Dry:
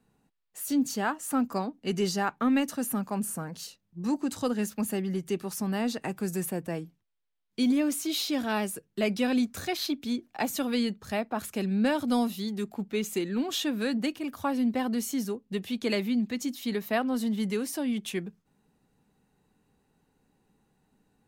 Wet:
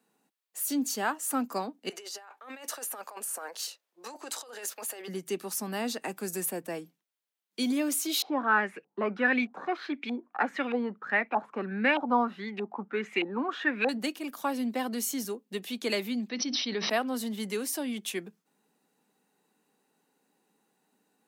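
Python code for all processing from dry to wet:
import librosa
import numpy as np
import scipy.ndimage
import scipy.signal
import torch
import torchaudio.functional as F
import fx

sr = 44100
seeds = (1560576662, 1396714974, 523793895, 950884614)

y = fx.chain(x, sr, fx.highpass(hz=460.0, slope=24),
    fx.high_shelf(hz=5900.0, db=-5.5),
    fx.over_compress(threshold_db=-42.0, ratio=-1.0), at=(1.89, 5.08))
y = fx.chain(y, sr, fx.filter_lfo_lowpass(shape='saw_up', hz=1.6, low_hz=740.0, high_hz=2600.0, q=6.7),
    fx.notch(hz=650.0, q=13.0), at=(8.22, 13.89))
y = fx.chain(y, sr, fx.brickwall_lowpass(high_hz=6100.0),
    fx.sustainer(db_per_s=38.0), at=(16.29, 16.9))
y = scipy.signal.sosfilt(scipy.signal.bessel(8, 310.0, 'highpass', norm='mag', fs=sr, output='sos'), y)
y = fx.high_shelf(y, sr, hz=6000.0, db=5.5)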